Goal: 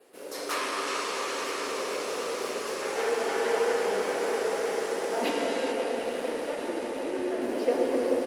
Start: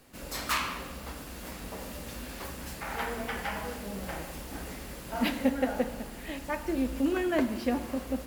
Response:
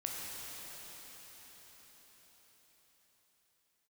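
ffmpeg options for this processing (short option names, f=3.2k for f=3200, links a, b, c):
-filter_complex "[0:a]adynamicequalizer=threshold=0.001:dfrequency=5700:dqfactor=3.1:tfrequency=5700:tqfactor=3.1:attack=5:release=100:ratio=0.375:range=2.5:mode=boostabove:tftype=bell,asplit=3[a][b][c];[a]afade=t=out:st=5.31:d=0.02[d];[b]acompressor=threshold=-36dB:ratio=6,afade=t=in:st=5.31:d=0.02,afade=t=out:st=7.41:d=0.02[e];[c]afade=t=in:st=7.41:d=0.02[f];[d][e][f]amix=inputs=3:normalize=0,highpass=f=420:t=q:w=4.9,asplit=2[g][h];[h]adelay=140,lowpass=f=1k:p=1,volume=-8.5dB,asplit=2[i][j];[j]adelay=140,lowpass=f=1k:p=1,volume=0.38,asplit=2[k][l];[l]adelay=140,lowpass=f=1k:p=1,volume=0.38,asplit=2[m][n];[n]adelay=140,lowpass=f=1k:p=1,volume=0.38[o];[g][i][k][m][o]amix=inputs=5:normalize=0[p];[1:a]atrim=start_sample=2205,asetrate=22491,aresample=44100[q];[p][q]afir=irnorm=-1:irlink=0,volume=-3.5dB" -ar 48000 -c:a libopus -b:a 48k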